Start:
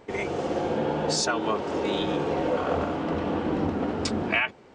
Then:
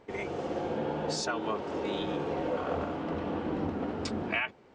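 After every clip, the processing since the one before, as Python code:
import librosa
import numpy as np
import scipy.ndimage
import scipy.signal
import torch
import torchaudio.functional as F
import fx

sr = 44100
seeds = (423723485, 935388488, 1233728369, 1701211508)

y = fx.high_shelf(x, sr, hz=7500.0, db=-8.0)
y = y * 10.0 ** (-6.0 / 20.0)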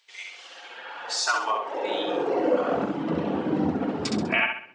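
y = fx.dereverb_blind(x, sr, rt60_s=1.6)
y = fx.echo_feedback(y, sr, ms=66, feedback_pct=40, wet_db=-4)
y = fx.filter_sweep_highpass(y, sr, from_hz=3700.0, to_hz=150.0, start_s=0.15, end_s=3.11, q=1.5)
y = y * 10.0 ** (7.0 / 20.0)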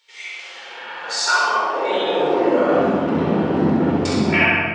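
y = fx.room_shoebox(x, sr, seeds[0], volume_m3=1400.0, walls='mixed', distance_m=4.4)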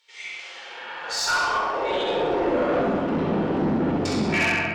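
y = fx.tube_stage(x, sr, drive_db=14.0, bias=0.25)
y = y * 10.0 ** (-2.5 / 20.0)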